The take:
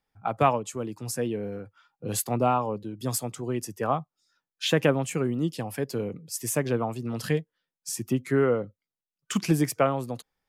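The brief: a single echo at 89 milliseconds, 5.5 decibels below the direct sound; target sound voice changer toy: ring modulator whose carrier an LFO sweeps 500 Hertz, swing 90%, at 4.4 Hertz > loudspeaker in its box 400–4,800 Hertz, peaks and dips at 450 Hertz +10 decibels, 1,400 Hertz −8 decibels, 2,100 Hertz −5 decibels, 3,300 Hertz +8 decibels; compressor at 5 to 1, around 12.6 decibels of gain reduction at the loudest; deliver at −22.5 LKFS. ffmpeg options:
ffmpeg -i in.wav -af "acompressor=threshold=-31dB:ratio=5,aecho=1:1:89:0.531,aeval=exprs='val(0)*sin(2*PI*500*n/s+500*0.9/4.4*sin(2*PI*4.4*n/s))':channel_layout=same,highpass=400,equalizer=frequency=450:width_type=q:width=4:gain=10,equalizer=frequency=1400:width_type=q:width=4:gain=-8,equalizer=frequency=2100:width_type=q:width=4:gain=-5,equalizer=frequency=3300:width_type=q:width=4:gain=8,lowpass=frequency=4800:width=0.5412,lowpass=frequency=4800:width=1.3066,volume=16dB" out.wav

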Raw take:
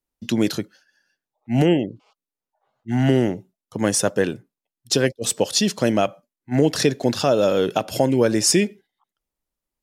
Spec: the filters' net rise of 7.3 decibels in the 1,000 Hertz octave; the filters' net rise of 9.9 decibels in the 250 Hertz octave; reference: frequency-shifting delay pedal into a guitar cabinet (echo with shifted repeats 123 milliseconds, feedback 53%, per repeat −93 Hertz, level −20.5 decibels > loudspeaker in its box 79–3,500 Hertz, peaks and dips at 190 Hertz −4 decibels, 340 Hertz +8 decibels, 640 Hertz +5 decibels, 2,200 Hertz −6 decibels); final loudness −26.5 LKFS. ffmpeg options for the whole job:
ffmpeg -i in.wav -filter_complex "[0:a]equalizer=frequency=250:width_type=o:gain=8.5,equalizer=frequency=1000:width_type=o:gain=7.5,asplit=5[link_01][link_02][link_03][link_04][link_05];[link_02]adelay=123,afreqshift=-93,volume=-20.5dB[link_06];[link_03]adelay=246,afreqshift=-186,volume=-26dB[link_07];[link_04]adelay=369,afreqshift=-279,volume=-31.5dB[link_08];[link_05]adelay=492,afreqshift=-372,volume=-37dB[link_09];[link_01][link_06][link_07][link_08][link_09]amix=inputs=5:normalize=0,highpass=79,equalizer=frequency=190:width_type=q:width=4:gain=-4,equalizer=frequency=340:width_type=q:width=4:gain=8,equalizer=frequency=640:width_type=q:width=4:gain=5,equalizer=frequency=2200:width_type=q:width=4:gain=-6,lowpass=frequency=3500:width=0.5412,lowpass=frequency=3500:width=1.3066,volume=-13dB" out.wav

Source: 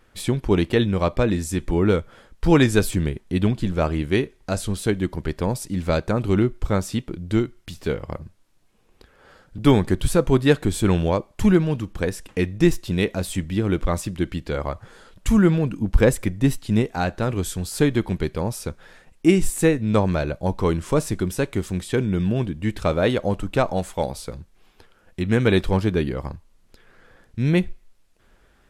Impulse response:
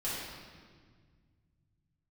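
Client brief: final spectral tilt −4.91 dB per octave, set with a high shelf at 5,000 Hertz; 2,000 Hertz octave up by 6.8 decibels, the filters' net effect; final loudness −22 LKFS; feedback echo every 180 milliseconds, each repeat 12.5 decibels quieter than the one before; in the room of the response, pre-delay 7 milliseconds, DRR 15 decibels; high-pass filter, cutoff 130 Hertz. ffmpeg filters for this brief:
-filter_complex "[0:a]highpass=130,equalizer=frequency=2000:width_type=o:gain=7.5,highshelf=frequency=5000:gain=7,aecho=1:1:180|360|540:0.237|0.0569|0.0137,asplit=2[link_01][link_02];[1:a]atrim=start_sample=2205,adelay=7[link_03];[link_02][link_03]afir=irnorm=-1:irlink=0,volume=-20dB[link_04];[link_01][link_04]amix=inputs=2:normalize=0,volume=-0.5dB"

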